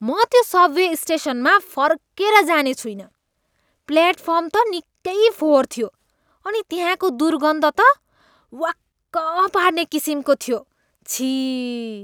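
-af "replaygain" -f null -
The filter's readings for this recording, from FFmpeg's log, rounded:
track_gain = -2.0 dB
track_peak = 0.620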